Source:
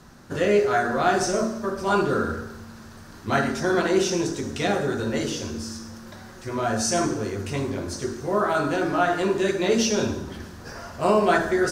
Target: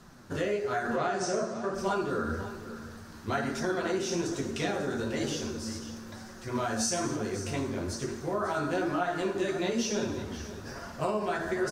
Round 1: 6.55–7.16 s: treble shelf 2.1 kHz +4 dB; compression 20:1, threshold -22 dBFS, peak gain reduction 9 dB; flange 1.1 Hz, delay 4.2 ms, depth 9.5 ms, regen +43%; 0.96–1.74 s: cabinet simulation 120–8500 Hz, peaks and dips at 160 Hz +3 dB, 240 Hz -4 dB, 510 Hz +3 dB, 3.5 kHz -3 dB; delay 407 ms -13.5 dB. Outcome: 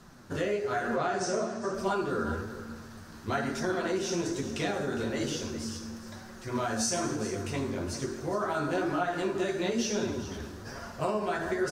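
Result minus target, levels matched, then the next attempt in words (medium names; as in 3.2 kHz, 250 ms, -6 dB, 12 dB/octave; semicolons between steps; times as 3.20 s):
echo 137 ms early
6.55–7.16 s: treble shelf 2.1 kHz +4 dB; compression 20:1, threshold -22 dBFS, peak gain reduction 9 dB; flange 1.1 Hz, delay 4.2 ms, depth 9.5 ms, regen +43%; 0.96–1.74 s: cabinet simulation 120–8500 Hz, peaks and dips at 160 Hz +3 dB, 240 Hz -4 dB, 510 Hz +3 dB, 3.5 kHz -3 dB; delay 544 ms -13.5 dB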